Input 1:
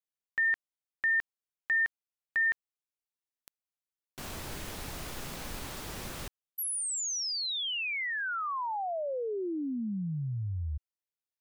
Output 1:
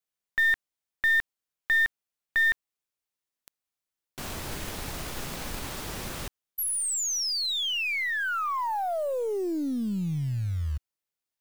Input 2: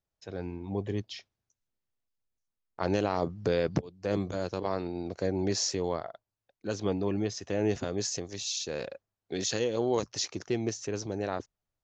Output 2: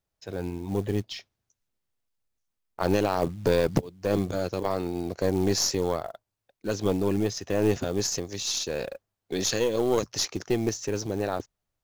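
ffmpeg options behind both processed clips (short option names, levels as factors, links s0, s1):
-af "acrusher=bits=6:mode=log:mix=0:aa=0.000001,aeval=exprs='0.224*(cos(1*acos(clip(val(0)/0.224,-1,1)))-cos(1*PI/2))+0.0251*(cos(4*acos(clip(val(0)/0.224,-1,1)))-cos(4*PI/2))':c=same,volume=1.68"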